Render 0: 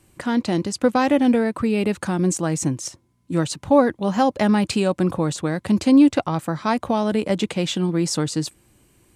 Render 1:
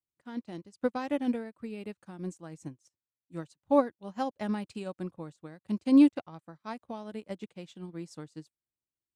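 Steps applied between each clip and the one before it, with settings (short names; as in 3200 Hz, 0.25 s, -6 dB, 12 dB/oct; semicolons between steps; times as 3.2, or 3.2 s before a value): upward expander 2.5:1, over -37 dBFS; gain -5.5 dB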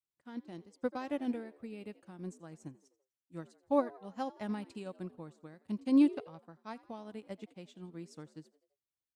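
frequency-shifting echo 84 ms, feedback 51%, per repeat +65 Hz, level -20.5 dB; gain -5.5 dB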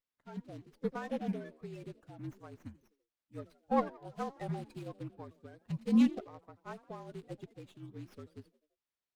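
bin magnitudes rounded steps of 30 dB; frequency shift -49 Hz; running maximum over 5 samples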